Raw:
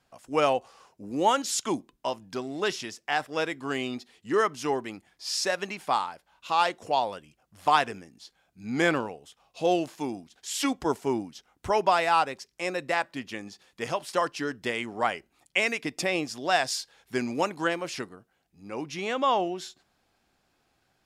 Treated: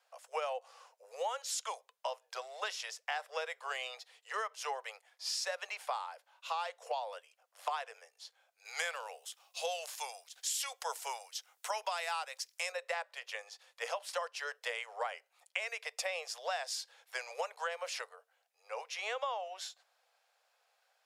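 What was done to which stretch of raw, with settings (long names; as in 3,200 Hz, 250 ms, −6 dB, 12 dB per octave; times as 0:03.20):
0:08.65–0:12.72: spectral tilt +3.5 dB per octave
whole clip: Butterworth high-pass 470 Hz 96 dB per octave; downward compressor 10 to 1, threshold −31 dBFS; level −2.5 dB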